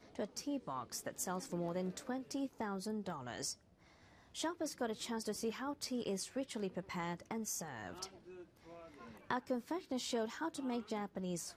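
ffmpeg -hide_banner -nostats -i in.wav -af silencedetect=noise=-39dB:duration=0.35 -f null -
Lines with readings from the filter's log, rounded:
silence_start: 3.52
silence_end: 4.37 | silence_duration: 0.85
silence_start: 8.05
silence_end: 9.30 | silence_duration: 1.26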